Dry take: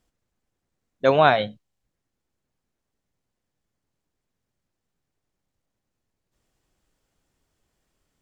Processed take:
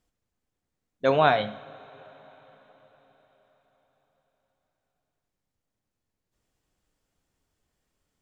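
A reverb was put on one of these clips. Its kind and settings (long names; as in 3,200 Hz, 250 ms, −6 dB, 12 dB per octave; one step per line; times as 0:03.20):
coupled-rooms reverb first 0.59 s, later 5 s, from −17 dB, DRR 11 dB
level −4 dB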